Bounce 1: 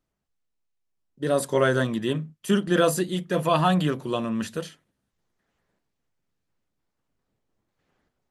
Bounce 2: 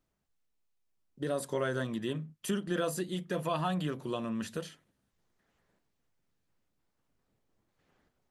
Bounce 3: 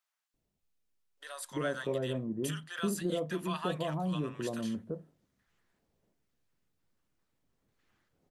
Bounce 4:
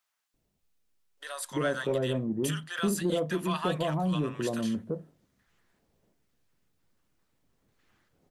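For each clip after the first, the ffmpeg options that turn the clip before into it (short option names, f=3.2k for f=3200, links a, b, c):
-af "acompressor=threshold=-38dB:ratio=2"
-filter_complex "[0:a]acrossover=split=860[a][b];[a]adelay=340[c];[c][b]amix=inputs=2:normalize=0"
-af "asoftclip=type=tanh:threshold=-22.5dB,volume=5.5dB"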